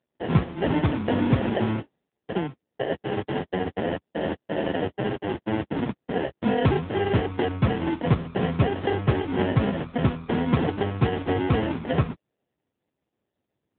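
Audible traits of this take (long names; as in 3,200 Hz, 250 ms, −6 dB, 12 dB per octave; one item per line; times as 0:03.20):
aliases and images of a low sample rate 1,200 Hz, jitter 0%
AMR narrowband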